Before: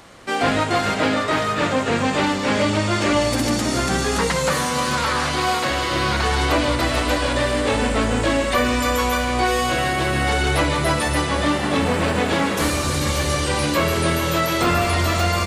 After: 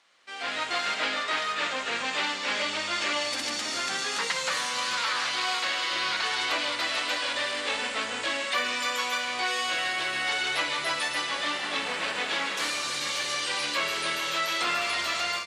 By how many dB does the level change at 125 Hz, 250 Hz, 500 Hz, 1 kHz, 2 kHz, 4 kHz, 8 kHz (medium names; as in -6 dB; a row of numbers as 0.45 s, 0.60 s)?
-30.5 dB, -21.0 dB, -15.0 dB, -9.5 dB, -4.5 dB, -2.0 dB, -7.0 dB